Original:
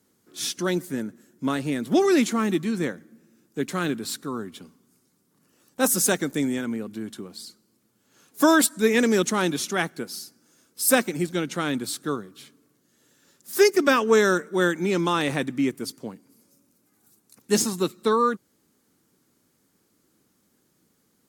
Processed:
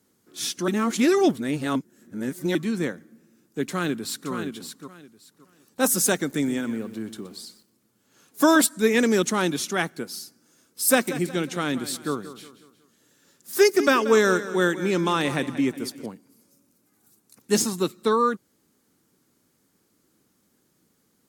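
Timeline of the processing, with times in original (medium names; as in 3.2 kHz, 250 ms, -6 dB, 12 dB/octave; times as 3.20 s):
0.68–2.55 s: reverse
3.65–4.30 s: echo throw 570 ms, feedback 20%, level -7.5 dB
6.17–8.61 s: bit-crushed delay 122 ms, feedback 35%, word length 8-bit, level -13.5 dB
10.89–16.06 s: feedback delay 182 ms, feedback 42%, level -14 dB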